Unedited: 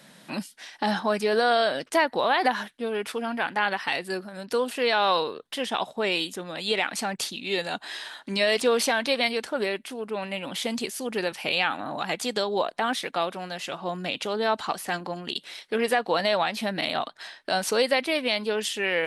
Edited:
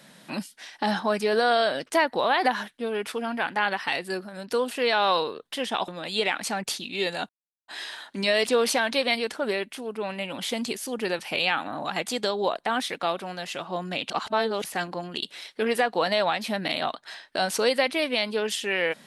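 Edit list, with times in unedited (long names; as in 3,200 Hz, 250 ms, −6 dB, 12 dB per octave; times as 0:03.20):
0:05.88–0:06.40: remove
0:07.81: splice in silence 0.39 s
0:14.23–0:14.77: reverse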